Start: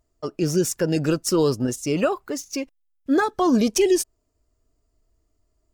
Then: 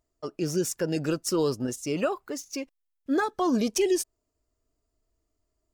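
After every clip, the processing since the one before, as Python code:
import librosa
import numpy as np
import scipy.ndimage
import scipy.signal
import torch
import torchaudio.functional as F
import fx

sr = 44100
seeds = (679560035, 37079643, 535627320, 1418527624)

y = fx.low_shelf(x, sr, hz=140.0, db=-5.5)
y = y * 10.0 ** (-5.0 / 20.0)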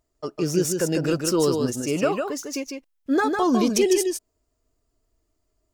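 y = x + 10.0 ** (-5.0 / 20.0) * np.pad(x, (int(152 * sr / 1000.0), 0))[:len(x)]
y = y * 10.0 ** (4.0 / 20.0)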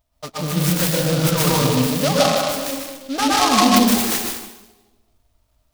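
y = fx.fixed_phaser(x, sr, hz=900.0, stages=4)
y = fx.rev_plate(y, sr, seeds[0], rt60_s=1.2, hf_ratio=0.7, predelay_ms=105, drr_db=-5.5)
y = fx.noise_mod_delay(y, sr, seeds[1], noise_hz=3600.0, depth_ms=0.098)
y = y * 10.0 ** (5.0 / 20.0)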